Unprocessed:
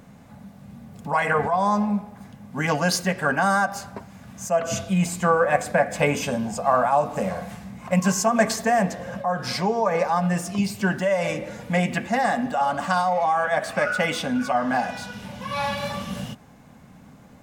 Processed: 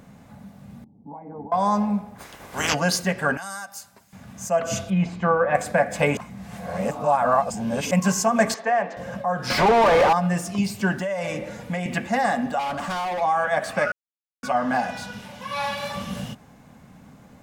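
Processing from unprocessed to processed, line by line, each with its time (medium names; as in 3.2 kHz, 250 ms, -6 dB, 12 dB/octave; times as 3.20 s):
0.84–1.52 s: cascade formant filter u
2.18–2.73 s: spectral peaks clipped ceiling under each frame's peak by 27 dB
3.37–4.13 s: pre-emphasis filter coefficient 0.9
4.90–5.55 s: distance through air 250 m
6.17–7.91 s: reverse
8.54–8.97 s: band-pass 440–2900 Hz
9.50–10.13 s: overdrive pedal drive 34 dB, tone 1.3 kHz, clips at -9 dBFS
10.92–11.86 s: compression, threshold -23 dBFS
12.59–13.21 s: hard clipper -25 dBFS
13.92–14.43 s: mute
15.21–15.96 s: bass shelf 280 Hz -9 dB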